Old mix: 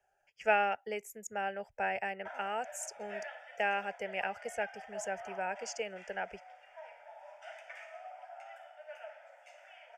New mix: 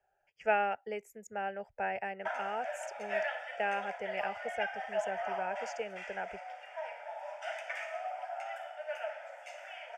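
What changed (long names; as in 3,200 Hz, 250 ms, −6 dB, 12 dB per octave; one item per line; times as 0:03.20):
speech: add high-shelf EQ 3,400 Hz −11.5 dB
background +9.0 dB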